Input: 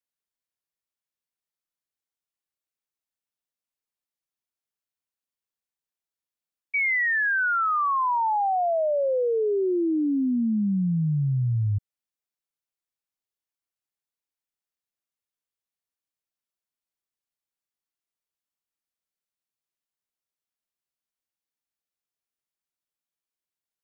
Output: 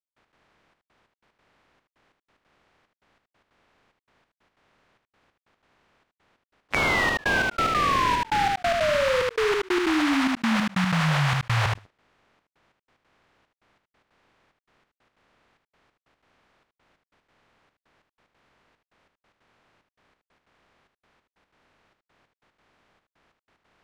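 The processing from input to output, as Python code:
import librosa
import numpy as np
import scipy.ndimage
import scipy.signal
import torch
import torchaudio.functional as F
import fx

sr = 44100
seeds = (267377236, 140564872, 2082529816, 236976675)

y = fx.spec_flatten(x, sr, power=0.18)
y = scipy.signal.sosfilt(scipy.signal.butter(2, 1900.0, 'lowpass', fs=sr, output='sos'), y)
y = fx.leveller(y, sr, passes=2)
y = fx.step_gate(y, sr, bpm=184, pattern='..x.xxxxx..xx', floor_db=-60.0, edge_ms=4.5)
y = y + 10.0 ** (-7.5 / 20.0) * np.pad(y, (int(76 * sr / 1000.0), 0))[:len(y)]
y = fx.env_flatten(y, sr, amount_pct=70)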